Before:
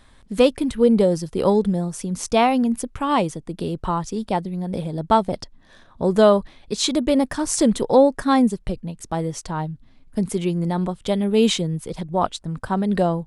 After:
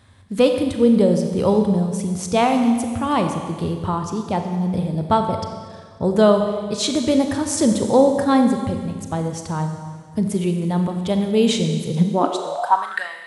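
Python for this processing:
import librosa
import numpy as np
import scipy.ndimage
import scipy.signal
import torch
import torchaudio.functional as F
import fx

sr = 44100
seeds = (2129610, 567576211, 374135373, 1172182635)

y = fx.rev_schroeder(x, sr, rt60_s=1.8, comb_ms=30, drr_db=5.0)
y = fx.filter_sweep_highpass(y, sr, from_hz=95.0, to_hz=2000.0, start_s=11.77, end_s=13.08, q=6.5)
y = y * librosa.db_to_amplitude(-1.0)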